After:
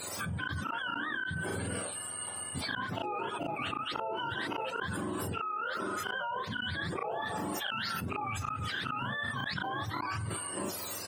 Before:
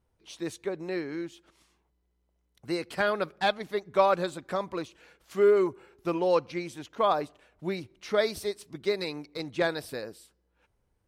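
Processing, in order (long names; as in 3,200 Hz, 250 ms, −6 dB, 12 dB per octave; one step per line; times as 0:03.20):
frequency axis turned over on the octave scale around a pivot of 720 Hz
bass and treble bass −14 dB, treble +1 dB
gate with flip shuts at −29 dBFS, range −30 dB
double-tracking delay 36 ms −4 dB
envelope flattener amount 100%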